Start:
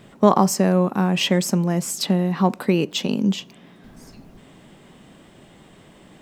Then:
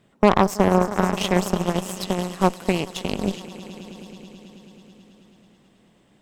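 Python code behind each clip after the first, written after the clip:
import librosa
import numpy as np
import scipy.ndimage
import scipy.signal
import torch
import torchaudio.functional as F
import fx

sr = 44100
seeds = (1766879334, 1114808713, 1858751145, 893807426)

y = fx.echo_swell(x, sr, ms=108, loudest=5, wet_db=-14.5)
y = fx.cheby_harmonics(y, sr, harmonics=(3, 6, 7), levels_db=(-26, -22, -21), full_scale_db=-0.5)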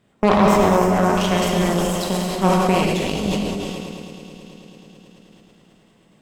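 y = fx.rev_gated(x, sr, seeds[0], gate_ms=390, shape='flat', drr_db=-2.5)
y = fx.sustainer(y, sr, db_per_s=21.0)
y = y * 10.0 ** (-2.5 / 20.0)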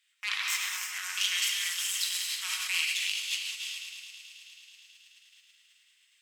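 y = scipy.signal.sosfilt(scipy.signal.cheby2(4, 60, 610.0, 'highpass', fs=sr, output='sos'), x)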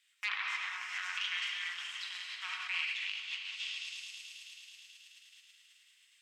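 y = fx.env_lowpass_down(x, sr, base_hz=2100.0, full_db=-30.5)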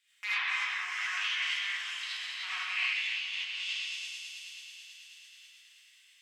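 y = fx.rev_gated(x, sr, seeds[1], gate_ms=110, shape='rising', drr_db=-7.0)
y = y * 10.0 ** (-3.0 / 20.0)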